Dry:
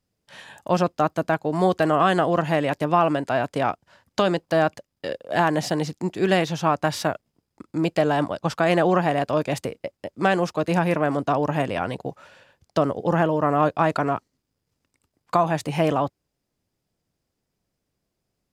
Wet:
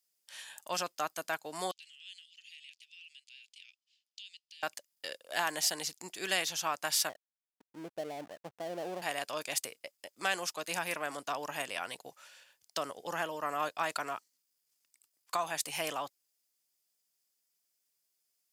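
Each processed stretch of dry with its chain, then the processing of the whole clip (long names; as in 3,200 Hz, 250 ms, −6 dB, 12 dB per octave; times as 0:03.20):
0:01.71–0:04.63: Butterworth high-pass 2,600 Hz 48 dB per octave + downward compressor 1.5 to 1, threshold −41 dBFS + head-to-tape spacing loss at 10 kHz 25 dB
0:07.09–0:09.02: inverse Chebyshev low-pass filter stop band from 4,100 Hz, stop band 80 dB + slack as between gear wheels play −31.5 dBFS
whole clip: first difference; notch filter 3,900 Hz, Q 29; level +5 dB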